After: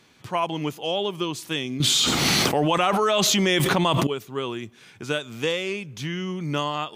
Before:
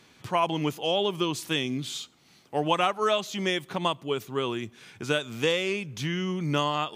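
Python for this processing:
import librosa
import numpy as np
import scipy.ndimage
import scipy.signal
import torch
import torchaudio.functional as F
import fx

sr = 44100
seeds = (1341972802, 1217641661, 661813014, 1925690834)

y = fx.env_flatten(x, sr, amount_pct=100, at=(1.8, 4.07))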